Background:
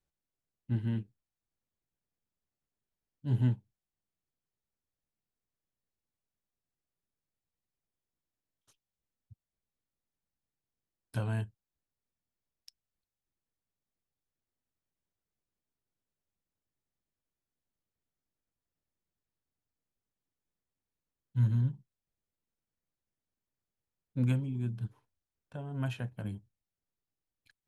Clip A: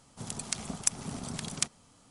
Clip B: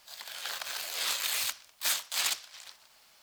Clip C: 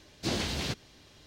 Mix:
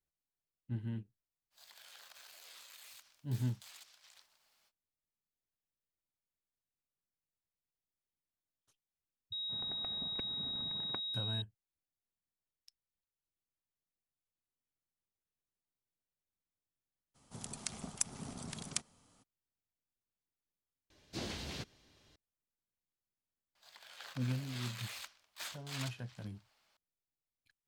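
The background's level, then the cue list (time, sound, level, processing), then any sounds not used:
background −7.5 dB
0:01.50: mix in B −14 dB, fades 0.05 s + downward compressor, threshold −38 dBFS
0:09.32: mix in A −12 dB + switching amplifier with a slow clock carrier 3,800 Hz
0:17.14: mix in A −7.5 dB, fades 0.02 s
0:20.90: overwrite with C −10.5 dB
0:23.55: mix in B −11 dB + low-pass filter 3,500 Hz 6 dB per octave

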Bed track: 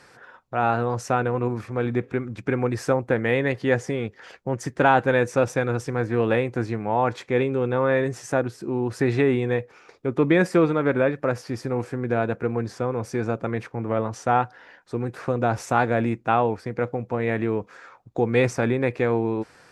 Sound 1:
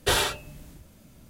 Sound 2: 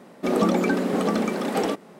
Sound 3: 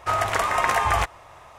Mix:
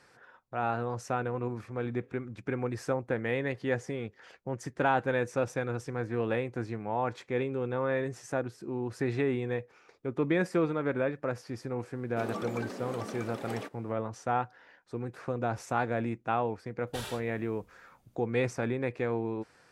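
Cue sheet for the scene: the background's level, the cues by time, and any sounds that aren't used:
bed track −9 dB
0:11.93: mix in 2 −13.5 dB + high-pass filter 390 Hz 6 dB per octave
0:16.87: mix in 1 −17.5 dB
not used: 3

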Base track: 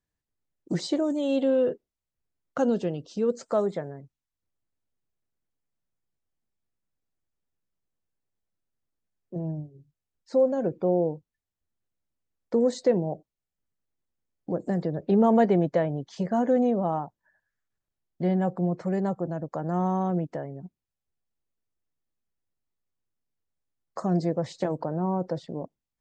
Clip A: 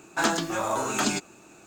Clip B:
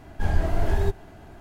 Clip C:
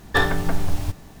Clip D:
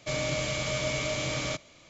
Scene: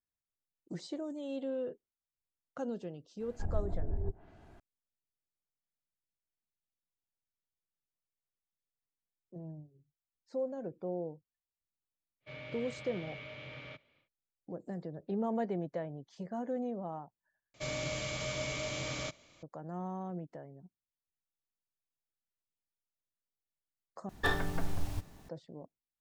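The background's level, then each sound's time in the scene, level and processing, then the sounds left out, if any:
base track −14 dB
0:03.20: mix in B −12 dB + treble cut that deepens with the level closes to 390 Hz, closed at −16.5 dBFS
0:12.20: mix in D −13 dB, fades 0.10 s + loudspeaker in its box 100–3,100 Hz, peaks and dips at 190 Hz −7 dB, 320 Hz −7 dB, 680 Hz −7 dB, 1,100 Hz −6 dB
0:17.54: overwrite with D −7 dB
0:24.09: overwrite with C −11.5 dB
not used: A

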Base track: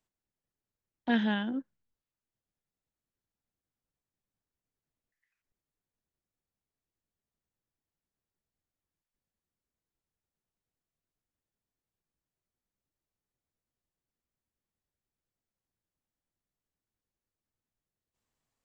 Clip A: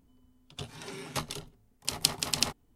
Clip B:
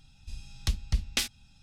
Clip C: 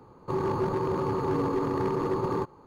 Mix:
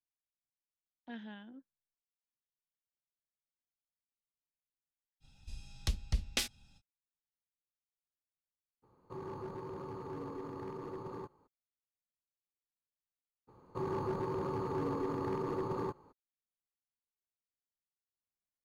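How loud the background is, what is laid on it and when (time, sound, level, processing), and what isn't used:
base track −19 dB
0:05.20: mix in B −5.5 dB, fades 0.05 s + parametric band 500 Hz +5.5 dB 1.4 octaves
0:08.82: mix in C −16 dB, fades 0.02 s
0:13.47: mix in C −8.5 dB, fades 0.02 s
not used: A

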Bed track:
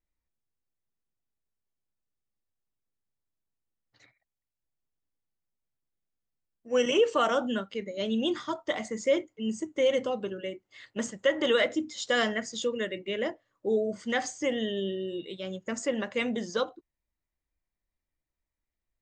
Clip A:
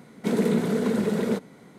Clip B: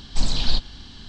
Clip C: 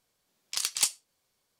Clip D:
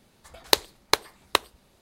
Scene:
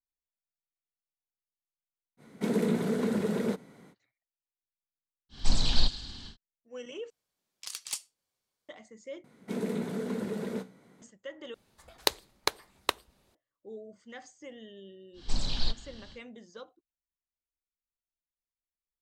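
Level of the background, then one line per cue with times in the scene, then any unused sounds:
bed track −17.5 dB
0:02.17: mix in A −5 dB, fades 0.05 s
0:05.29: mix in B −3.5 dB, fades 0.10 s + delay with a high-pass on its return 105 ms, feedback 65%, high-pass 4,400 Hz, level −9 dB
0:07.10: overwrite with C −10 dB
0:09.24: overwrite with A −5.5 dB + tuned comb filter 63 Hz, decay 0.29 s
0:11.54: overwrite with D −7 dB
0:15.13: mix in B −8.5 dB, fades 0.10 s

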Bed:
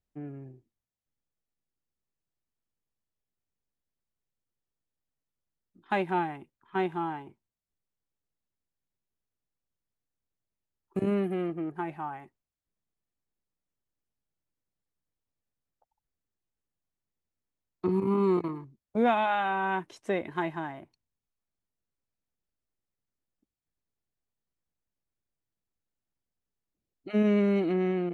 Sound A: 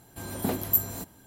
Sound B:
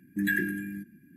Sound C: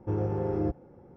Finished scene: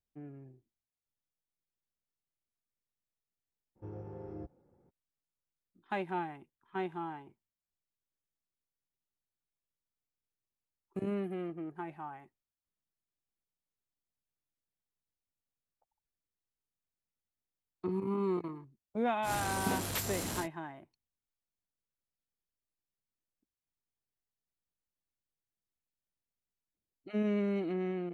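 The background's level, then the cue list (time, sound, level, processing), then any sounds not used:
bed −7.5 dB
0:03.75: mix in C −16 dB, fades 0.02 s
0:19.22: mix in A −6 dB, fades 0.10 s + linear delta modulator 64 kbit/s, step −25 dBFS
not used: B

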